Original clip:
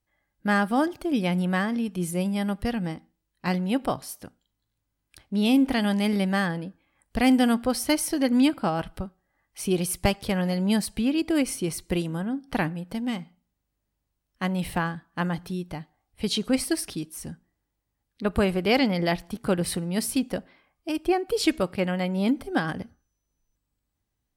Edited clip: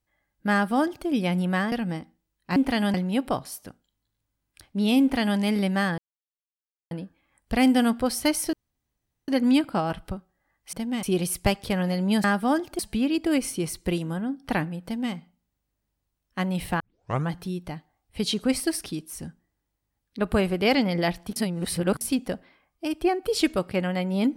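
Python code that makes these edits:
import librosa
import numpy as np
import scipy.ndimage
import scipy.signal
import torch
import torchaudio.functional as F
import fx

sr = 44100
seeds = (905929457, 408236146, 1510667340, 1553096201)

y = fx.edit(x, sr, fx.duplicate(start_s=0.52, length_s=0.55, to_s=10.83),
    fx.cut(start_s=1.72, length_s=0.95),
    fx.duplicate(start_s=5.58, length_s=0.38, to_s=3.51),
    fx.insert_silence(at_s=6.55, length_s=0.93),
    fx.insert_room_tone(at_s=8.17, length_s=0.75),
    fx.duplicate(start_s=12.88, length_s=0.3, to_s=9.62),
    fx.tape_start(start_s=14.84, length_s=0.49),
    fx.reverse_span(start_s=19.4, length_s=0.65), tone=tone)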